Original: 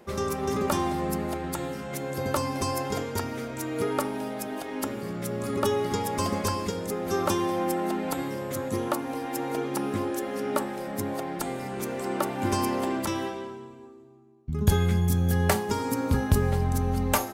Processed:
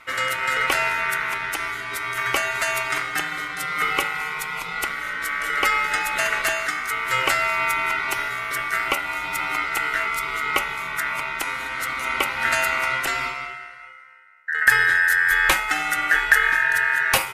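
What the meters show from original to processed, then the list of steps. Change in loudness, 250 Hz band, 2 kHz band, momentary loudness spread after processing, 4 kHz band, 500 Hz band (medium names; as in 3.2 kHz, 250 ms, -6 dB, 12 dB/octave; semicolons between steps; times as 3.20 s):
+7.0 dB, -13.0 dB, +20.0 dB, 10 LU, +10.0 dB, -5.0 dB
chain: ring modulator 1.7 kHz; trim +8 dB; MP3 64 kbps 32 kHz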